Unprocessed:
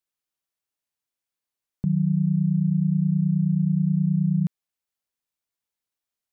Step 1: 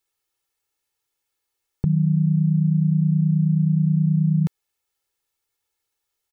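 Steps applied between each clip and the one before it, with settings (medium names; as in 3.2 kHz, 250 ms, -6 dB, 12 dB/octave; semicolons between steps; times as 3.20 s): comb 2.3 ms, depth 77%; trim +6.5 dB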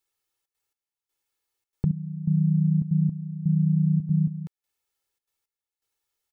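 trance gate "xxxxx.xx....x" 165 bpm -12 dB; trim -2.5 dB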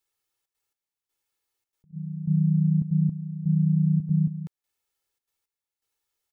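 attacks held to a fixed rise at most 360 dB/s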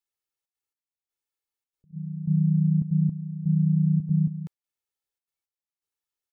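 spectral noise reduction 10 dB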